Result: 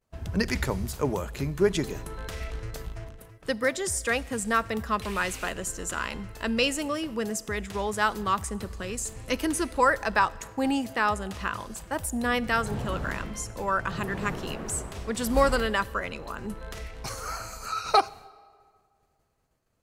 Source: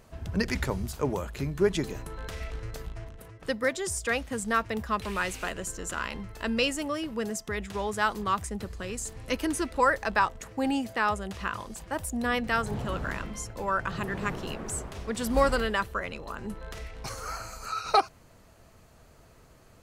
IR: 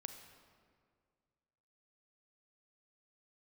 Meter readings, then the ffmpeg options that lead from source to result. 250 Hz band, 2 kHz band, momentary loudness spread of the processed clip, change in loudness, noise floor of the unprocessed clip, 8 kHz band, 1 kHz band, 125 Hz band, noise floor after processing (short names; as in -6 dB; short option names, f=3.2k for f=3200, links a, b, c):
+1.5 dB, +1.5 dB, 13 LU, +1.5 dB, -56 dBFS, +3.5 dB, +1.5 dB, +1.5 dB, -69 dBFS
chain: -filter_complex "[0:a]agate=range=-33dB:threshold=-42dB:ratio=3:detection=peak,asplit=2[a][b];[1:a]atrim=start_sample=2205,highshelf=f=4.5k:g=11[c];[b][c]afir=irnorm=-1:irlink=0,volume=-10dB[d];[a][d]amix=inputs=2:normalize=0"